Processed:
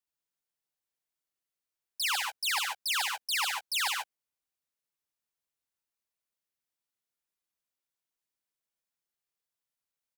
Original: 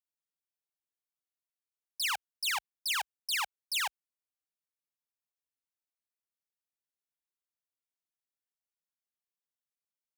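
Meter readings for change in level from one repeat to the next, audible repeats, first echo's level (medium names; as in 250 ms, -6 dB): no regular repeats, 2, -7.0 dB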